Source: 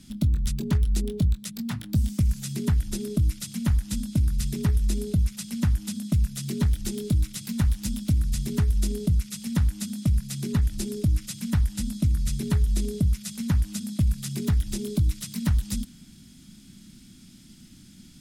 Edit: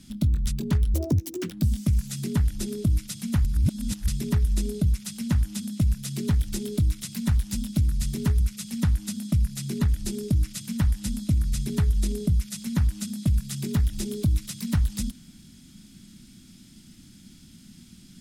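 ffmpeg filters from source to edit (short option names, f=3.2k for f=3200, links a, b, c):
-filter_complex "[0:a]asplit=6[a][b][c][d][e][f];[a]atrim=end=0.944[g];[b]atrim=start=0.94:end=1.83,asetpts=PTS-STARTPTS,asetrate=69237,aresample=44100,atrim=end_sample=24999,asetpts=PTS-STARTPTS[h];[c]atrim=start=1.826:end=3.772[i];[d]atrim=start=3.768:end=4.402,asetpts=PTS-STARTPTS,areverse[j];[e]atrim=start=4.398:end=8.722[k];[f]atrim=start=9.128[l];[g][h]acrossfade=d=0.004:c1=hsin:c2=hsin[m];[m][i]acrossfade=d=0.004:c1=hsin:c2=hsin[n];[n][j]acrossfade=d=0.004:c1=hsin:c2=hsin[o];[o][k]acrossfade=d=0.004:c1=hsin:c2=hsin[p];[p][l]acrossfade=d=0.004:c1=hsin:c2=hsin"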